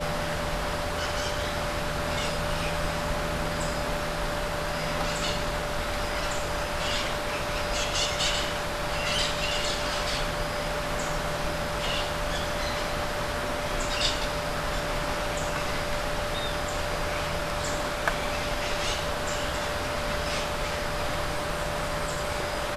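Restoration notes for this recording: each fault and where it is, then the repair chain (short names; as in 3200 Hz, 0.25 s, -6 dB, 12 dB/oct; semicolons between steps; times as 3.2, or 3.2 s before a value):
tone 590 Hz -34 dBFS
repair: notch 590 Hz, Q 30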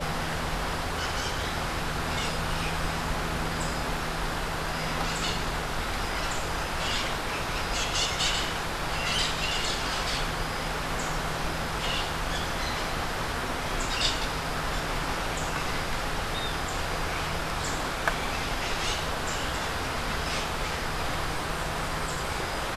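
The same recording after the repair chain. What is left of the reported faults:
none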